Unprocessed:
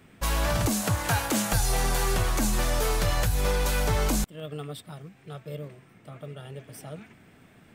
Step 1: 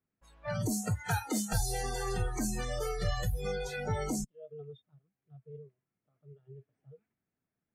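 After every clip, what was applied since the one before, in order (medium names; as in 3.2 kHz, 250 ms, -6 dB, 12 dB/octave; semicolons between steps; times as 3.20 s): spectral noise reduction 29 dB; level-controlled noise filter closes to 1.9 kHz, open at -22.5 dBFS; trim -5 dB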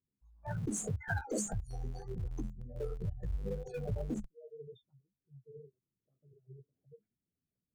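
resonances exaggerated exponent 3; flange 1.9 Hz, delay 10 ms, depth 7.2 ms, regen -16%; in parallel at -11.5 dB: Schmitt trigger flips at -38.5 dBFS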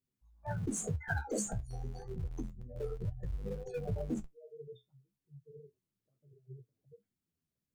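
flange 0.31 Hz, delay 7.4 ms, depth 8.9 ms, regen +54%; trim +4.5 dB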